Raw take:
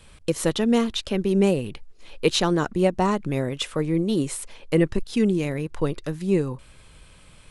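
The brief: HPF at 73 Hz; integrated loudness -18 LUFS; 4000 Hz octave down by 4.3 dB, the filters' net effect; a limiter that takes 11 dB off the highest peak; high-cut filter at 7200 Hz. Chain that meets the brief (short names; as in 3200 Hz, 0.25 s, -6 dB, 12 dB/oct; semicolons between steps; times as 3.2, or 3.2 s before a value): HPF 73 Hz; LPF 7200 Hz; bell 4000 Hz -5 dB; gain +10 dB; limiter -7.5 dBFS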